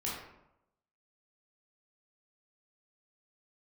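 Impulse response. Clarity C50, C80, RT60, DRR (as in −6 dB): 1.0 dB, 5.0 dB, 0.85 s, −6.5 dB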